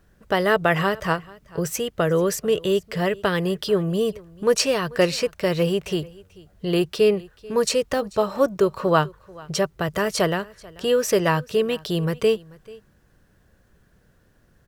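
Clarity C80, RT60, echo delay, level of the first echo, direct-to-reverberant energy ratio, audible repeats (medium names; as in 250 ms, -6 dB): no reverb, no reverb, 438 ms, -22.5 dB, no reverb, 1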